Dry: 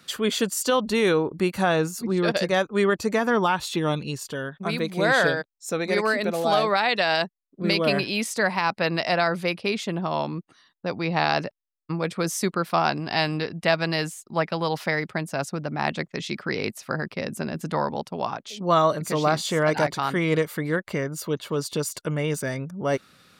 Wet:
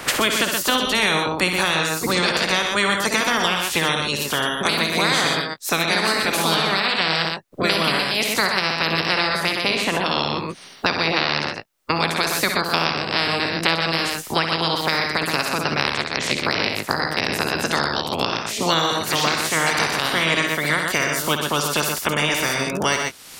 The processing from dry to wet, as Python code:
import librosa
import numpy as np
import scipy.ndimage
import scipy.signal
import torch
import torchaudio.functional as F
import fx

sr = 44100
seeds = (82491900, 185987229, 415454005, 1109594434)

y = fx.spec_clip(x, sr, under_db=23)
y = fx.echo_multitap(y, sr, ms=(55, 67, 122, 141), db=(-9.0, -8.5, -6.0, -15.5))
y = fx.band_squash(y, sr, depth_pct=100)
y = y * librosa.db_to_amplitude(1.0)